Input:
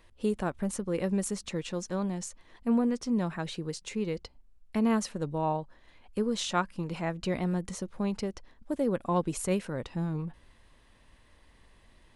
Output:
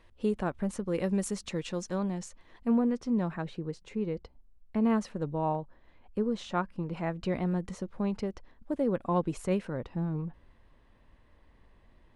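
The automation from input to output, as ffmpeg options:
-af "asetnsamples=n=441:p=0,asendcmd='0.88 lowpass f 8200;1.98 lowpass f 3700;2.71 lowpass f 1900;3.42 lowpass f 1000;4.81 lowpass f 1800;5.55 lowpass f 1100;6.97 lowpass f 2200;9.77 lowpass f 1200',lowpass=f=3400:p=1"

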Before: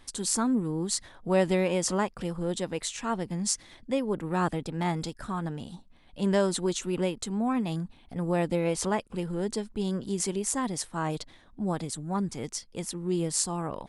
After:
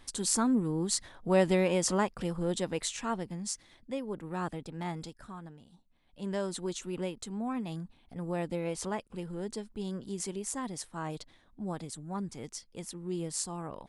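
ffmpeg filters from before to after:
-af "volume=3.16,afade=t=out:st=2.9:d=0.52:silence=0.446684,afade=t=out:st=4.97:d=0.67:silence=0.316228,afade=t=in:st=5.64:d=1.08:silence=0.281838"

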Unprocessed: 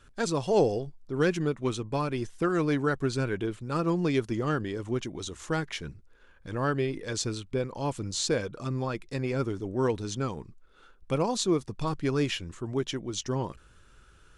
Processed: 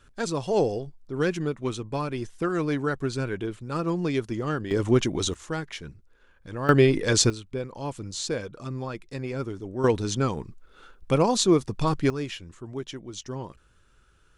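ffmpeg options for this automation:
-af "asetnsamples=n=441:p=0,asendcmd='4.71 volume volume 10dB;5.34 volume volume -1.5dB;6.69 volume volume 11dB;7.3 volume volume -2dB;9.84 volume volume 6dB;12.1 volume volume -4.5dB',volume=1"

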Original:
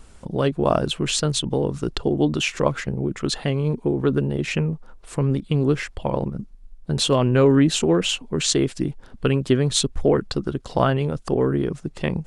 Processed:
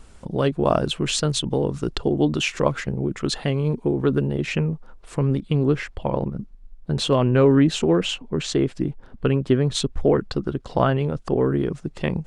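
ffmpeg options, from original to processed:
-af "asetnsamples=n=441:p=0,asendcmd='4.27 lowpass f 5300;5.57 lowpass f 3300;8.14 lowpass f 1900;9.75 lowpass f 3300;11.46 lowpass f 6200',lowpass=f=9800:p=1"

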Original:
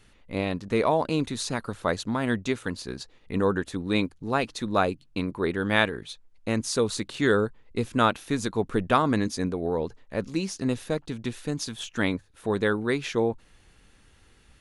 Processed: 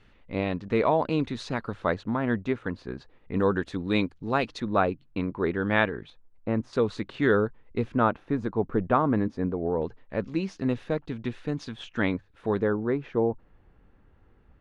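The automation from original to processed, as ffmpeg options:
-af "asetnsamples=n=441:p=0,asendcmd='1.94 lowpass f 1900;3.36 lowpass f 4300;4.6 lowpass f 2300;6.1 lowpass f 1300;6.73 lowpass f 2400;7.96 lowpass f 1300;9.82 lowpass f 2700;12.62 lowpass f 1100',lowpass=3100"

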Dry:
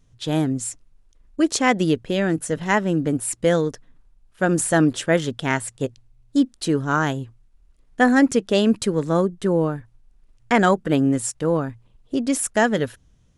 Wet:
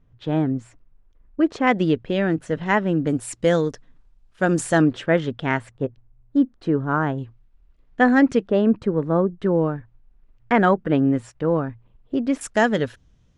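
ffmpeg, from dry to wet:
-af "asetnsamples=n=441:p=0,asendcmd='1.67 lowpass f 3200;3.07 lowpass f 6500;4.82 lowpass f 2700;5.71 lowpass f 1500;7.18 lowpass f 3300;8.48 lowpass f 1400;9.39 lowpass f 2400;12.41 lowpass f 5800',lowpass=1900"

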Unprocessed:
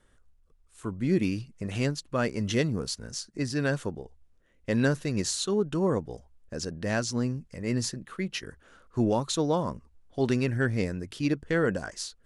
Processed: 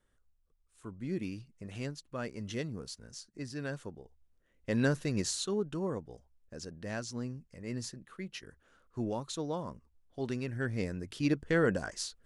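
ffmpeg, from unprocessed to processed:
-af "volume=1.78,afade=t=in:st=3.97:d=1.08:silence=0.398107,afade=t=out:st=5.05:d=0.89:silence=0.446684,afade=t=in:st=10.49:d=0.87:silence=0.398107"

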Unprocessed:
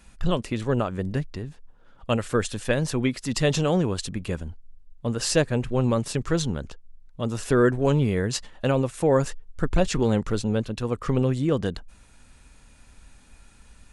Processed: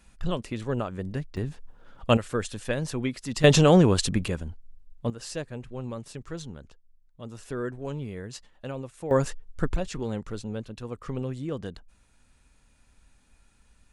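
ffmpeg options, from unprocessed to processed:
-af "asetnsamples=n=441:p=0,asendcmd='1.37 volume volume 3.5dB;2.17 volume volume -5dB;3.44 volume volume 5.5dB;4.28 volume volume -1dB;5.1 volume volume -13dB;9.11 volume volume -1.5dB;9.76 volume volume -9.5dB',volume=0.562"

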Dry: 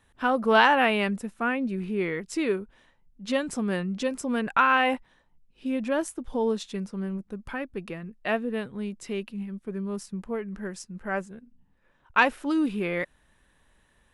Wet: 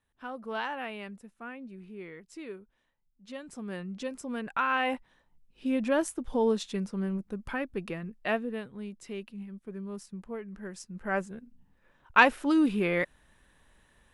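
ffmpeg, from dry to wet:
-af "volume=2.51,afade=t=in:st=3.38:d=0.54:silence=0.421697,afade=t=in:st=4.6:d=1.13:silence=0.398107,afade=t=out:st=8.08:d=0.55:silence=0.446684,afade=t=in:st=10.61:d=0.71:silence=0.398107"

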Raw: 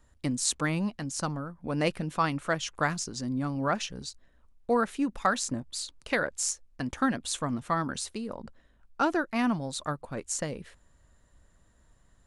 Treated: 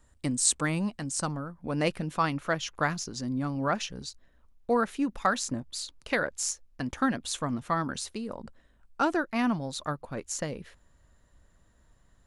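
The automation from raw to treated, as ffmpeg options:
-af "asetnsamples=n=441:p=0,asendcmd='1.31 equalizer g -0.5;2.31 equalizer g -12;3.1 equalizer g -4;8.26 equalizer g 4.5;9.16 equalizer g -7.5',equalizer=f=8300:t=o:w=0.24:g=9"

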